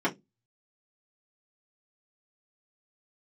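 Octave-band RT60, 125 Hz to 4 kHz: 0.30 s, 0.30 s, 0.20 s, 0.10 s, 0.15 s, 0.15 s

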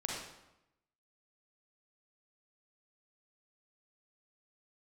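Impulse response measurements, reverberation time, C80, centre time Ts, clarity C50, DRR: 0.90 s, 3.0 dB, 65 ms, -0.5 dB, -3.0 dB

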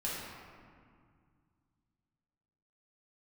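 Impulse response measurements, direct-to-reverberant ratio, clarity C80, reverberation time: -7.0 dB, 0.5 dB, 2.1 s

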